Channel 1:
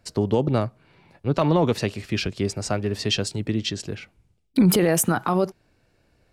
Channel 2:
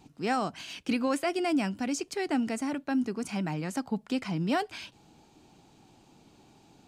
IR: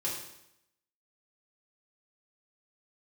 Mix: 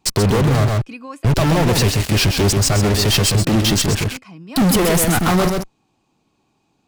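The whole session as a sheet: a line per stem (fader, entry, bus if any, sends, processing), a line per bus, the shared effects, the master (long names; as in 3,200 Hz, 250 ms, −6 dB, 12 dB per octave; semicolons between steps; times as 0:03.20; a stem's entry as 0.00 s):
−0.5 dB, 0.00 s, no send, echo send −5.5 dB, high-shelf EQ 4,000 Hz +8.5 dB; fuzz pedal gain 38 dB, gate −36 dBFS; low-shelf EQ 130 Hz +11 dB
−7.5 dB, 0.00 s, no send, no echo send, hollow resonant body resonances 1,100/2,500 Hz, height 12 dB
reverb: not used
echo: single-tap delay 131 ms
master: brickwall limiter −8 dBFS, peak gain reduction 6 dB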